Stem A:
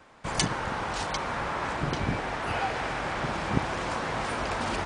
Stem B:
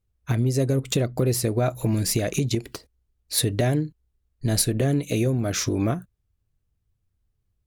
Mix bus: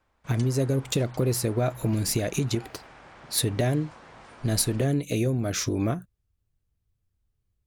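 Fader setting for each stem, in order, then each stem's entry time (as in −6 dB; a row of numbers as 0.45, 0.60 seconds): −18.0, −2.5 decibels; 0.00, 0.00 seconds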